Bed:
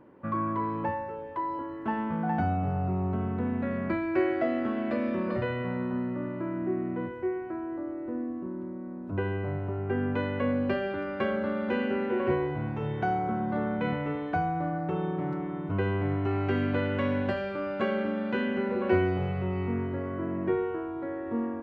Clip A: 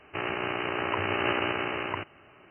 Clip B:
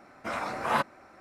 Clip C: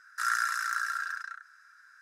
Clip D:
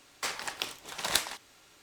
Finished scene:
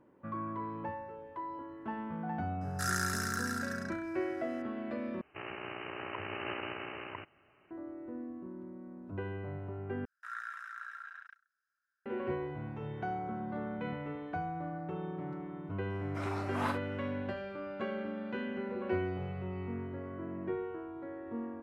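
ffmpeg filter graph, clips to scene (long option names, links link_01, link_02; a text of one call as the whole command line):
ffmpeg -i bed.wav -i cue0.wav -i cue1.wav -i cue2.wav -filter_complex "[3:a]asplit=2[link_01][link_02];[0:a]volume=-9dB[link_03];[link_01]highshelf=frequency=2700:gain=11.5[link_04];[link_02]afwtdn=0.0112[link_05];[2:a]aecho=1:1:39|60:0.398|0.282[link_06];[link_03]asplit=3[link_07][link_08][link_09];[link_07]atrim=end=5.214[link_10];[1:a]atrim=end=2.5,asetpts=PTS-STARTPTS,volume=-11.5dB[link_11];[link_08]atrim=start=7.706:end=10.054[link_12];[link_05]atrim=end=2.01,asetpts=PTS-STARTPTS,volume=-13.5dB[link_13];[link_09]atrim=start=12.056[link_14];[link_04]atrim=end=2.01,asetpts=PTS-STARTPTS,volume=-9dB,afade=type=in:duration=0.004:curve=hsin,afade=type=out:start_time=2.006:duration=0.004:curve=hsin,adelay=2610[link_15];[link_06]atrim=end=1.2,asetpts=PTS-STARTPTS,volume=-9.5dB,afade=type=in:duration=0.004:curve=hsin,afade=type=out:start_time=1.196:duration=0.004:curve=hsin,adelay=15900[link_16];[link_10][link_11]acrossfade=duration=0.004:curve1=hsin:curve2=hsin[link_17];[link_17][link_12]acrossfade=duration=0.004:curve1=hsin:curve2=hsin[link_18];[link_18][link_13]acrossfade=duration=0.004:curve1=hsin:curve2=hsin[link_19];[link_19][link_14]acrossfade=duration=0.004:curve1=hsin:curve2=hsin[link_20];[link_20][link_15][link_16]amix=inputs=3:normalize=0" out.wav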